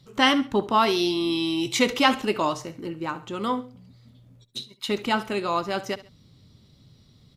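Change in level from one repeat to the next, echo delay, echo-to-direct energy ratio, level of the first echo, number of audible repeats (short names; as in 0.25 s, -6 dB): -9.0 dB, 68 ms, -16.5 dB, -17.0 dB, 2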